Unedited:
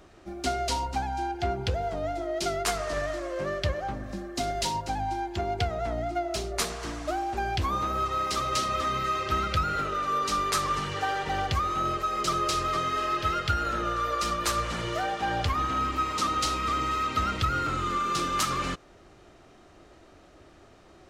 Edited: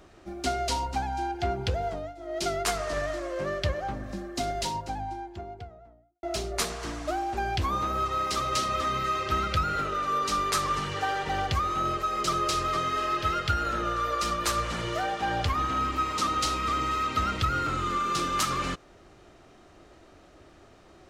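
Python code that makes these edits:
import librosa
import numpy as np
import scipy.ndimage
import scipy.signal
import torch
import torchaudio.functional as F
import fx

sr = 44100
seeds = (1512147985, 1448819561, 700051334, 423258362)

y = fx.studio_fade_out(x, sr, start_s=4.25, length_s=1.98)
y = fx.edit(y, sr, fx.fade_down_up(start_s=1.89, length_s=0.53, db=-15.0, fade_s=0.26), tone=tone)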